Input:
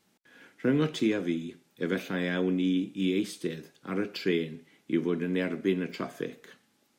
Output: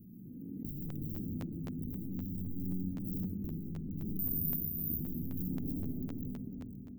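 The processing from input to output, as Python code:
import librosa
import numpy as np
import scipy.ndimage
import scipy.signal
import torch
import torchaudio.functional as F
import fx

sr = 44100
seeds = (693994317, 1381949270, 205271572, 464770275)

y = fx.peak_eq(x, sr, hz=200.0, db=-3.0, octaves=1.3, at=(0.91, 1.39))
y = (np.mod(10.0 ** (24.5 / 20.0) * y + 1.0, 2.0) - 1.0) / 10.0 ** (24.5 / 20.0)
y = scipy.signal.sosfilt(scipy.signal.cheby2(4, 60, [760.0, 8200.0], 'bandstop', fs=sr, output='sos'), y)
y = fx.over_compress(y, sr, threshold_db=-40.0, ratio=-1.0)
y = fx.peak_eq(y, sr, hz=790.0, db=12.0, octaves=2.0, at=(5.51, 5.96))
y = fx.rev_freeverb(y, sr, rt60_s=3.3, hf_ratio=0.45, predelay_ms=30, drr_db=-1.5)
y = fx.resample_bad(y, sr, factor=3, down='filtered', up='zero_stuff', at=(4.19, 4.99))
y = fx.echo_feedback(y, sr, ms=502, feedback_pct=23, wet_db=-14.0)
y = fx.buffer_crackle(y, sr, first_s=0.88, period_s=0.26, block=512, kind='repeat')
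y = fx.pre_swell(y, sr, db_per_s=21.0)
y = y * 10.0 ** (-2.0 / 20.0)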